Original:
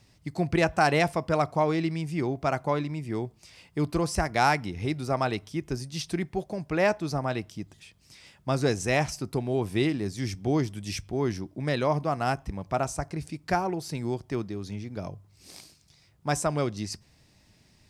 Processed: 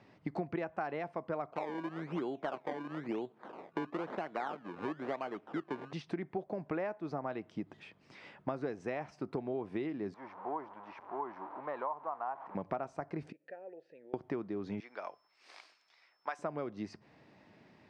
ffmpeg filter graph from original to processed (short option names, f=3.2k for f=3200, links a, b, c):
-filter_complex "[0:a]asettb=1/sr,asplit=3[a][b][c];[a]atrim=end=1.534[d];[b]atrim=start=1.53:end=5.93,asetpts=PTS-STARTPTS,afade=t=in:d=0.004:c=qsin,afade=t=out:st=4.396:d=0.004:c=qsin,acrusher=samples=23:mix=1:aa=0.000001:lfo=1:lforange=23:lforate=1,highpass=190[e];[c]atrim=start=5.926[f];[d][e]acrossfade=d=0.004:c1=hsin:c2=qsin[g];[g][f]acrossfade=d=0.004:c1=qsin:c2=hsin,asettb=1/sr,asplit=3[h][i][j];[h]atrim=end=10.144[k];[i]atrim=start=10.14:end=12.55,asetpts=PTS-STARTPTS,afade=t=in:d=0.004:c=qsin,afade=t=out:st=2.406:d=0.004:c=qsin,aeval=exprs='val(0)+0.5*0.0237*sgn(val(0))':c=same,bandpass=f=960:t=q:w=4.6[l];[j]atrim=start=12.546[m];[k][l]acrossfade=d=0.004:c1=hsin:c2=qsin[n];[n][m]acrossfade=d=0.004:c1=qsin:c2=hsin,asettb=1/sr,asplit=3[o][p][q];[o]atrim=end=13.324[r];[p]atrim=start=13.32:end=14.14,asetpts=PTS-STARTPTS,afade=t=in:d=0.004:c=qsin,afade=t=out:st=0.816:d=0.004:c=qsin,equalizer=f=2.1k:w=7.8:g=-3.5,acompressor=threshold=-44dB:ratio=3:attack=3.2:release=140:knee=1:detection=peak,asplit=3[s][t][u];[s]bandpass=f=530:t=q:w=8,volume=0dB[v];[t]bandpass=f=1.84k:t=q:w=8,volume=-6dB[w];[u]bandpass=f=2.48k:t=q:w=8,volume=-9dB[x];[v][w][x]amix=inputs=3:normalize=0[y];[q]atrim=start=14.136[z];[r][y]acrossfade=d=0.004:c1=hsin:c2=qsin[aa];[aa][z]acrossfade=d=0.004:c1=qsin:c2=hsin,asettb=1/sr,asplit=3[ab][ac][ad];[ab]atrim=end=14.804[ae];[ac]atrim=start=14.8:end=16.39,asetpts=PTS-STARTPTS,afade=t=in:d=0.004:c=qsin,afade=t=out:st=1.586:d=0.004:c=qsin,highpass=1.1k,aeval=exprs='val(0)+0.000794*sin(2*PI*5300*n/s)':c=same[af];[ad]atrim=start=16.386[ag];[ae][af]acrossfade=d=0.004:c1=hsin:c2=qsin[ah];[ah][ag]acrossfade=d=0.004:c1=qsin:c2=hsin,highpass=240,acompressor=threshold=-40dB:ratio=10,lowpass=1.7k,volume=6.5dB"